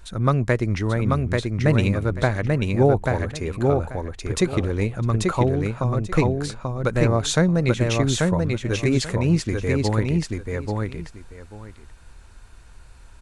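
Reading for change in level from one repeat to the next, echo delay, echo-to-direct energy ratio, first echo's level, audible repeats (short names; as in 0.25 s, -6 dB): -14.5 dB, 0.837 s, -3.0 dB, -3.0 dB, 2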